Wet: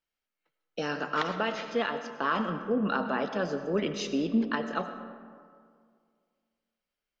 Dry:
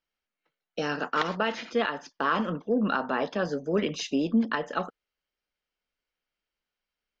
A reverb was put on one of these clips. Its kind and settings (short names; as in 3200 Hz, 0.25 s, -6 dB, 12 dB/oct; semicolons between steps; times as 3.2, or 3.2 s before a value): digital reverb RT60 2.1 s, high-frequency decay 0.45×, pre-delay 55 ms, DRR 9 dB; gain -2.5 dB